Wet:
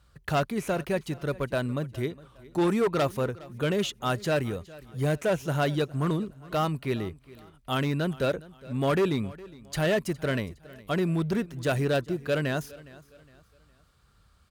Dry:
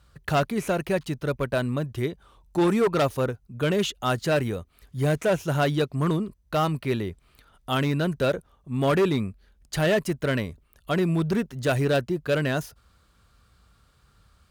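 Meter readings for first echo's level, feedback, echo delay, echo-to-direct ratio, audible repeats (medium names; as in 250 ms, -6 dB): -20.5 dB, 37%, 412 ms, -20.0 dB, 2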